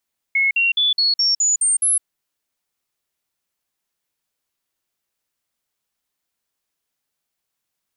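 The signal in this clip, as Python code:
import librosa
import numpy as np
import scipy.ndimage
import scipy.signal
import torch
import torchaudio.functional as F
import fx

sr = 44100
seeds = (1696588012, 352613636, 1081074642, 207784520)

y = fx.stepped_sweep(sr, from_hz=2180.0, direction='up', per_octave=3, tones=8, dwell_s=0.16, gap_s=0.05, level_db=-14.0)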